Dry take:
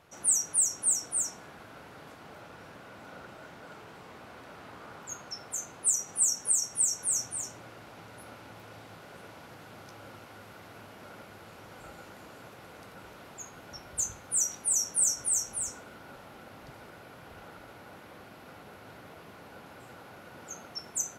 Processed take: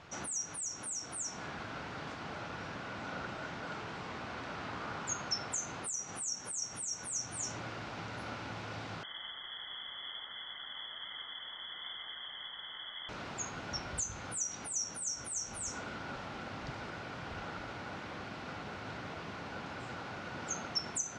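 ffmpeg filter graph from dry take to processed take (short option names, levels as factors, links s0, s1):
-filter_complex "[0:a]asettb=1/sr,asplit=3[s0][s1][s2];[s0]atrim=end=9.034[s3];[s1]atrim=start=9.03:end=13.09,asetpts=PTS-STARTPTS,afade=t=in:d=0.004:c=qsin,afade=t=out:st=4.056:d=0.004:c=qsin,asuperstop=centerf=840:order=12:qfactor=0.78,lowpass=f=3000:t=q:w=0.5098,lowpass=f=3000:t=q:w=0.6013,lowpass=f=3000:t=q:w=0.9,lowpass=f=3000:t=q:w=2.563,afreqshift=-3500[s4];[s2]atrim=start=13.086[s5];[s3][s4]acrossfade=d=0.004:c1=hsin:c2=qsin[s6];[s6][s5]acrossfade=d=0.004:c1=qsin:c2=hsin,acompressor=threshold=0.0178:ratio=16,lowpass=f=6500:w=0.5412,lowpass=f=6500:w=1.3066,equalizer=f=500:t=o:w=1.2:g=-4.5,volume=2.37"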